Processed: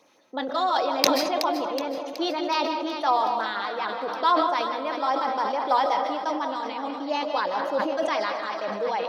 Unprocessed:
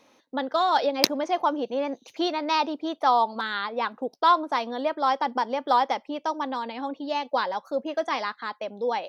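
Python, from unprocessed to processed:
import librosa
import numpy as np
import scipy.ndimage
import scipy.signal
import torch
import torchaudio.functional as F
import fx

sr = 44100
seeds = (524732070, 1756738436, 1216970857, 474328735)

p1 = scipy.signal.sosfilt(scipy.signal.butter(2, 140.0, 'highpass', fs=sr, output='sos'), x)
p2 = fx.peak_eq(p1, sr, hz=240.0, db=-11.5, octaves=0.2)
p3 = fx.rider(p2, sr, range_db=5, speed_s=2.0)
p4 = p2 + F.gain(torch.from_numpy(p3), 1.0).numpy()
p5 = fx.filter_lfo_notch(p4, sr, shape='sine', hz=6.5, low_hz=440.0, high_hz=3900.0, q=1.6)
p6 = p5 + fx.echo_alternate(p5, sr, ms=186, hz=900.0, feedback_pct=75, wet_db=-9.0, dry=0)
p7 = fx.rev_freeverb(p6, sr, rt60_s=0.67, hf_ratio=0.45, predelay_ms=110, drr_db=7.5)
p8 = fx.sustainer(p7, sr, db_per_s=37.0)
y = F.gain(torch.from_numpy(p8), -7.5).numpy()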